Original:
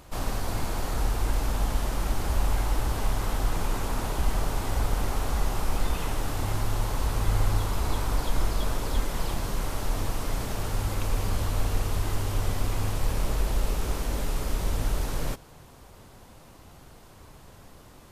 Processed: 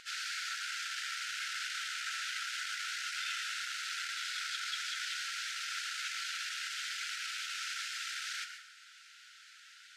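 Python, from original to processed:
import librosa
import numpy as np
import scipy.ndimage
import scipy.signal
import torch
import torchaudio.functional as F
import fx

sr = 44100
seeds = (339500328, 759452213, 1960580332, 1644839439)

p1 = fx.high_shelf(x, sr, hz=3500.0, db=10.5)
p2 = fx.stretch_vocoder_free(p1, sr, factor=0.55)
p3 = np.clip(10.0 ** (27.0 / 20.0) * p2, -1.0, 1.0) / 10.0 ** (27.0 / 20.0)
p4 = p2 + (p3 * 10.0 ** (-4.0 / 20.0))
p5 = fx.brickwall_highpass(p4, sr, low_hz=1300.0)
p6 = fx.air_absorb(p5, sr, metres=140.0)
p7 = fx.rev_plate(p6, sr, seeds[0], rt60_s=0.66, hf_ratio=0.65, predelay_ms=105, drr_db=7.0)
y = p7 * 10.0 ** (1.5 / 20.0)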